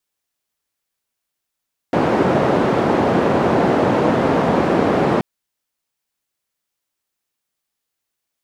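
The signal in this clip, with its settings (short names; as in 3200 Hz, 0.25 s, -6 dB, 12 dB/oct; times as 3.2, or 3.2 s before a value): noise band 150–590 Hz, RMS -16 dBFS 3.28 s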